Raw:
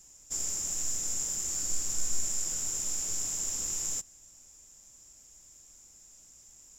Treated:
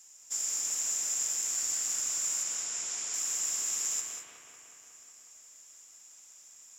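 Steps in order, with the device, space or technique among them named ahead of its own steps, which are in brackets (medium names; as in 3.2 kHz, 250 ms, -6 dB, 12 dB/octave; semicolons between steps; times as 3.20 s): 2.43–3.14 s: low-pass 6.7 kHz 12 dB/octave; bucket-brigade echo 183 ms, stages 4096, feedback 70%, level -3.5 dB; filter by subtraction (in parallel: low-pass 1.7 kHz 12 dB/octave + polarity flip); on the sum: gated-style reverb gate 240 ms rising, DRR 6 dB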